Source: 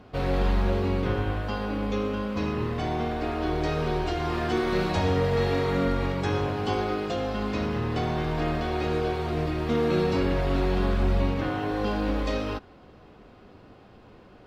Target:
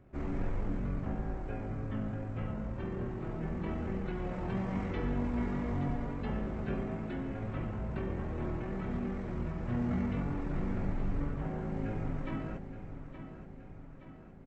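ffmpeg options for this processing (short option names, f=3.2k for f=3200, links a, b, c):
-af "asetrate=22696,aresample=44100,atempo=1.94306,aecho=1:1:871|1742|2613|3484|4355|5226:0.282|0.158|0.0884|0.0495|0.0277|0.0155,volume=-8.5dB"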